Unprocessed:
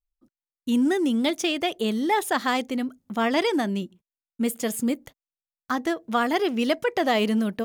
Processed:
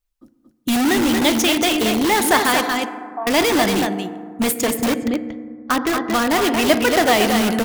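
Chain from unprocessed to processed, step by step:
harmonic and percussive parts rebalanced percussive +6 dB
0:02.66–0:03.27: formant resonators in series a
0:04.61–0:06.44: high-frequency loss of the air 200 metres
on a send: single-tap delay 230 ms −6 dB
on the sum: feedback delay network reverb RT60 1.9 s, low-frequency decay 1.35×, high-frequency decay 0.35×, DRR 11 dB
in parallel at −3.5 dB: wrap-around overflow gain 19 dB
on the sum: level +2.5 dB

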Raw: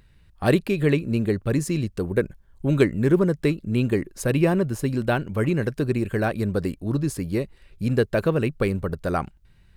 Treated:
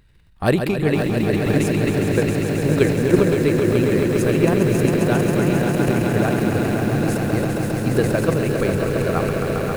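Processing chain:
echo that builds up and dies away 135 ms, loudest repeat 5, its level −6.5 dB
transient designer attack +6 dB, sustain +10 dB
feedback echo at a low word length 511 ms, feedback 80%, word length 5 bits, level −10.5 dB
level −2 dB

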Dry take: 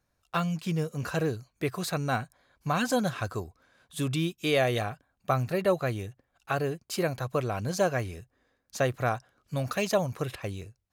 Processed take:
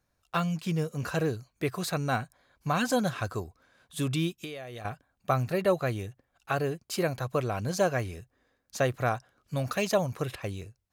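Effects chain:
0:04.37–0:04.85: downward compressor 20 to 1, threshold −37 dBFS, peak gain reduction 17.5 dB

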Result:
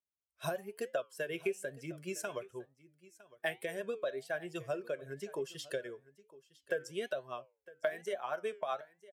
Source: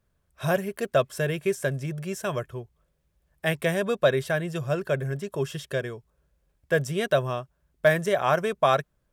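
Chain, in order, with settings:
spectral dynamics exaggerated over time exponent 1.5
high-pass filter 510 Hz 12 dB per octave
tilt shelving filter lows +3 dB, about 1,100 Hz
downward compressor 5 to 1, threshold −39 dBFS, peak gain reduction 20.5 dB
rotating-speaker cabinet horn 8 Hz
flanger 1.1 Hz, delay 6.5 ms, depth 5 ms, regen −82%
single-tap delay 958 ms −20 dB
level +11 dB

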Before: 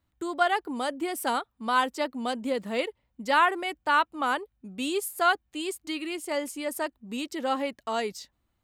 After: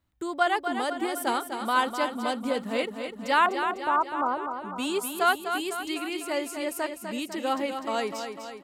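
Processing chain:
0:03.46–0:04.54: Butterworth low-pass 1,300 Hz 48 dB per octave
repeating echo 250 ms, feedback 58%, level −7.5 dB

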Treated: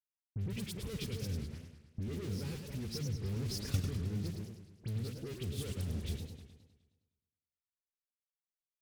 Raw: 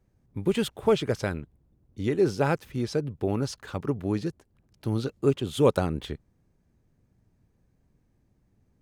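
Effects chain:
single-tap delay 275 ms −22.5 dB
in parallel at −1 dB: speech leveller within 4 dB 0.5 s
on the sum: EQ curve with evenly spaced ripples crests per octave 0.87, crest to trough 7 dB
fuzz pedal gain 40 dB, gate −38 dBFS
high-pass filter 62 Hz
brickwall limiter −13 dBFS, peak gain reduction 6.5 dB
guitar amp tone stack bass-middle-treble 10-0-1
all-pass dispersion highs, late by 52 ms, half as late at 2,500 Hz
0:03.23–0:03.80: transient designer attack +11 dB, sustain +7 dB
feedback echo with a swinging delay time 104 ms, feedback 55%, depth 207 cents, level −6.5 dB
level −3 dB

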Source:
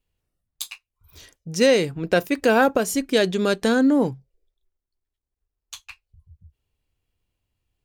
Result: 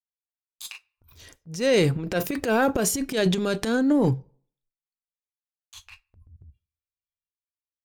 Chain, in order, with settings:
noise reduction from a noise print of the clip's start 20 dB
noise gate with hold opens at −54 dBFS
parametric band 95 Hz +7 dB 0.91 octaves
transient designer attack −9 dB, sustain +11 dB
on a send: convolution reverb RT60 0.55 s, pre-delay 11 ms, DRR 23 dB
on the sum: level −3.5 dB

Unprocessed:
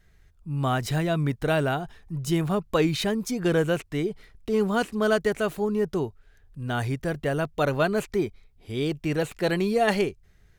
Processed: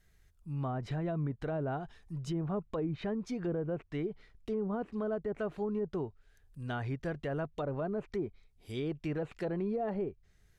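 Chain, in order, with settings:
high-shelf EQ 5,900 Hz +9.5 dB, from 0:02.19 −2 dB, from 0:04.82 +10 dB
treble cut that deepens with the level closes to 780 Hz, closed at −19.5 dBFS
brickwall limiter −18.5 dBFS, peak gain reduction 6 dB
level −8 dB

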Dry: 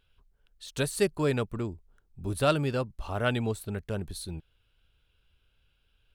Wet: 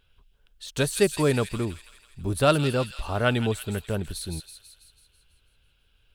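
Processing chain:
delay with a high-pass on its return 164 ms, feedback 57%, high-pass 2,700 Hz, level −5 dB
level +4.5 dB

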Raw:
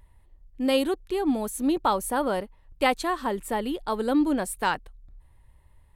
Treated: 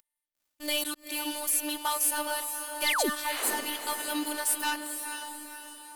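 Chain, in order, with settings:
first difference
leveller curve on the samples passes 5
in parallel at +2 dB: brickwall limiter −28.5 dBFS, peak gain reduction 11 dB
on the sum: phases set to zero 297 Hz
sound drawn into the spectrogram fall, 0:02.86–0:03.10, 210–5,100 Hz −22 dBFS
on a send: feedback delay with all-pass diffusion 477 ms, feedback 47%, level −7 dB
on the sum: level −6 dB

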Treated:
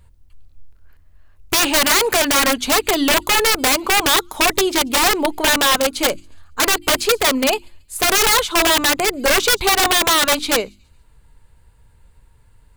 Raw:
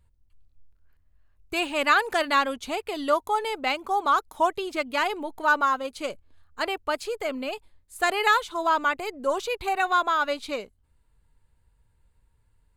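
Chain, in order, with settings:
in parallel at +3 dB: compressor whose output falls as the input rises −26 dBFS, ratio −0.5
on the sum: delay with a high-pass on its return 139 ms, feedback 38%, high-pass 4,800 Hz, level −21.5 dB
wrap-around overflow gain 14 dB
mains-hum notches 50/100/150/200/250/300/350 Hz
level +5 dB

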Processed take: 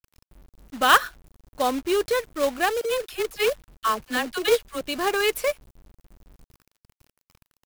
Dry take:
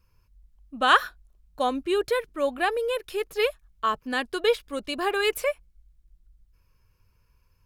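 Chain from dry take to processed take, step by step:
0:02.81–0:04.81: all-pass dispersion lows, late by 54 ms, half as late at 610 Hz
log-companded quantiser 4 bits
level +1.5 dB

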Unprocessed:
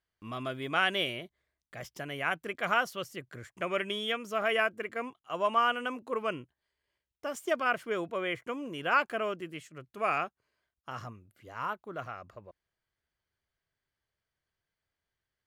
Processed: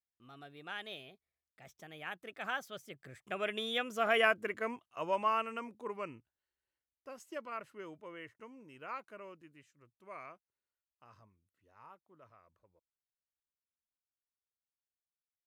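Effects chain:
source passing by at 0:04.28, 30 m/s, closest 19 metres

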